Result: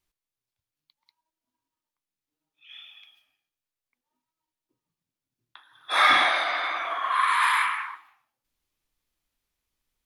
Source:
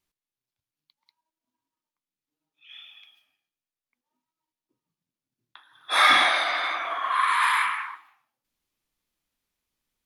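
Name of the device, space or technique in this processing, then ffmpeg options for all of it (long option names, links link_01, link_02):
low shelf boost with a cut just above: -filter_complex "[0:a]asettb=1/sr,asplit=3[link_01][link_02][link_03];[link_01]atrim=end=5.924[link_04];[link_02]atrim=start=5.92:end=6.76,asetpts=PTS-STARTPTS,afade=type=in:duration=0.004:curve=qsin,afade=type=out:start_time=0.836:duration=0.004:curve=qsin,highshelf=frequency=4400:gain=-7[link_05];[link_03]atrim=start=6.756[link_06];[link_04][link_05]acrossfade=duration=0.004:curve1=hsin:curve2=qsin[link_07];[link_07][link_06]acrossfade=duration=0.004:curve1=qsin:curve2=hsin,lowshelf=frequency=92:gain=7,equalizer=frequency=200:width_type=o:width=0.93:gain=-4"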